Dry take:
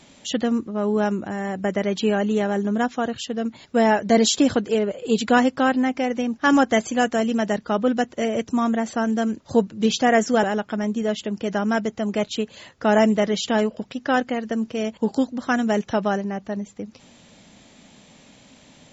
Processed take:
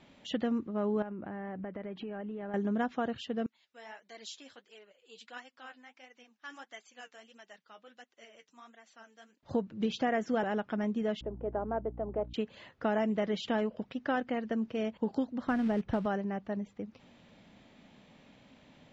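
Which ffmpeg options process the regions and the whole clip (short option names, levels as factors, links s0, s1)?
-filter_complex "[0:a]asettb=1/sr,asplit=3[s0][s1][s2];[s0]atrim=end=1.024[s3];[s1]atrim=start=1.02:end=2.54,asetpts=PTS-STARTPTS,afade=t=in:d=0.004:c=qsin,afade=t=out:st=1.516:d=0.004:c=qsin,lowpass=2300,acompressor=threshold=0.0355:ratio=12:attack=3.2:release=140:knee=1:detection=peak[s4];[s2]atrim=start=2.536[s5];[s3][s4]acrossfade=d=0.004:c1=hsin:c2=qsin[s6];[s6][s5]acrossfade=d=0.004:c1=qsin:c2=hsin,asettb=1/sr,asplit=3[s7][s8][s9];[s7]atrim=end=3.464[s10];[s8]atrim=start=3.46:end=9.43,asetpts=PTS-STARTPTS,afade=t=in:d=0.004:c=qsin,afade=t=out:st=5.966:d=0.004:c=qsin,aderivative,flanger=delay=2.5:depth=8.8:regen=39:speed=1.5:shape=sinusoidal[s11];[s9]atrim=start=9.426[s12];[s10][s11]acrossfade=d=0.004:c1=hsin:c2=qsin[s13];[s13][s12]acrossfade=d=0.004:c1=qsin:c2=hsin,asettb=1/sr,asplit=3[s14][s15][s16];[s14]atrim=end=11.214[s17];[s15]atrim=start=11.21:end=12.34,asetpts=PTS-STARTPTS,afade=t=in:d=0.004:c=qsin,afade=t=out:st=1.126:d=0.004:c=qsin,asuperpass=centerf=560:order=4:qfactor=0.85,aeval=exprs='val(0)+0.0141*(sin(2*PI*60*n/s)+sin(2*PI*2*60*n/s)/2+sin(2*PI*3*60*n/s)/3+sin(2*PI*4*60*n/s)/4+sin(2*PI*5*60*n/s)/5)':c=same[s18];[s16]atrim=start=12.336[s19];[s17][s18]acrossfade=d=0.004:c1=hsin:c2=qsin[s20];[s20][s19]acrossfade=d=0.004:c1=qsin:c2=hsin,asettb=1/sr,asplit=3[s21][s22][s23];[s21]atrim=end=15.474[s24];[s22]atrim=start=15.47:end=16.06,asetpts=PTS-STARTPTS,afade=t=in:d=0.004:c=qsin,afade=t=out:st=0.586:d=0.004:c=qsin,aemphasis=mode=reproduction:type=bsi,acrusher=bits=5:mode=log:mix=0:aa=0.000001[s25];[s23]atrim=start=16.056[s26];[s24][s25]acrossfade=d=0.004:c1=hsin:c2=qsin[s27];[s27][s26]acrossfade=d=0.004:c1=qsin:c2=hsin,lowpass=3100,acompressor=threshold=0.112:ratio=6,volume=0.422"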